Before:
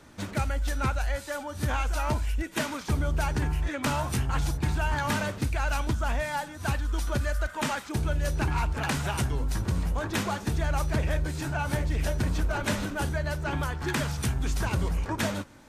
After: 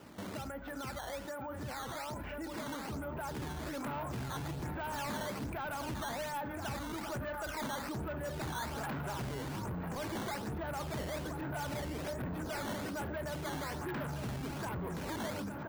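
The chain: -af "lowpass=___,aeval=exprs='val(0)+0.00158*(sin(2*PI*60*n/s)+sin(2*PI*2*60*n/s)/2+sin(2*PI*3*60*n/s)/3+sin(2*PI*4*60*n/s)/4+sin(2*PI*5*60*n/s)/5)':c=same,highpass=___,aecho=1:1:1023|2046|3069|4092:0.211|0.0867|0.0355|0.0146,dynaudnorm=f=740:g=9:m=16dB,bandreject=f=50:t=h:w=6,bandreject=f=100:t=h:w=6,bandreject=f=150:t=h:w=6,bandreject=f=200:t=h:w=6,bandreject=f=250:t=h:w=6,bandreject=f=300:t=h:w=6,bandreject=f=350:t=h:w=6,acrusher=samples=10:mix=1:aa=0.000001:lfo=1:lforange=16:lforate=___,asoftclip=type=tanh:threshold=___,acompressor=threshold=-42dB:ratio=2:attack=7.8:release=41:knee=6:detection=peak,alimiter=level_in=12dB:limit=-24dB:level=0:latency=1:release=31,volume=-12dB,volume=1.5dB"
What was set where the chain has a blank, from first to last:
1.5k, 140, 1.2, -18dB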